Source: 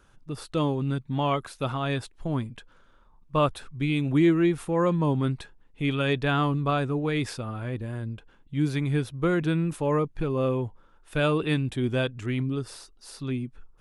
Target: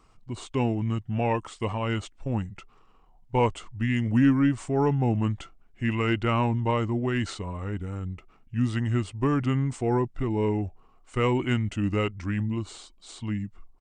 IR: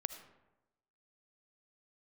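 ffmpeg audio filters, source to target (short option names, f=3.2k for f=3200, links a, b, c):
-af "asetrate=36028,aresample=44100,atempo=1.22405,aeval=exprs='0.266*(cos(1*acos(clip(val(0)/0.266,-1,1)))-cos(1*PI/2))+0.00531*(cos(4*acos(clip(val(0)/0.266,-1,1)))-cos(4*PI/2))':c=same"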